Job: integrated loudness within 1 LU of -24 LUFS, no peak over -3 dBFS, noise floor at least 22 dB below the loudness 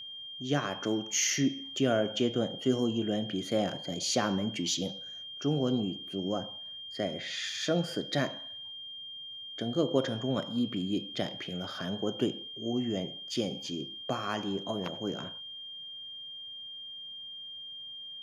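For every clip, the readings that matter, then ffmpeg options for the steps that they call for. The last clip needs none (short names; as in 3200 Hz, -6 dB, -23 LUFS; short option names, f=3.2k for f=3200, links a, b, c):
steady tone 3200 Hz; tone level -41 dBFS; loudness -33.0 LUFS; peak -13.5 dBFS; loudness target -24.0 LUFS
-> -af "bandreject=f=3.2k:w=30"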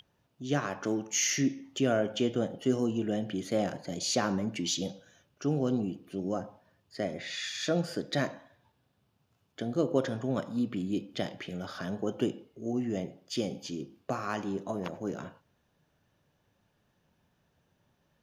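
steady tone none; loudness -32.5 LUFS; peak -14.0 dBFS; loudness target -24.0 LUFS
-> -af "volume=8.5dB"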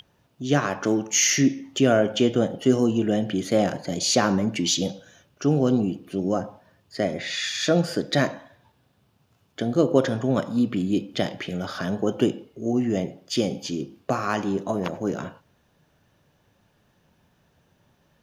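loudness -24.0 LUFS; peak -5.5 dBFS; noise floor -65 dBFS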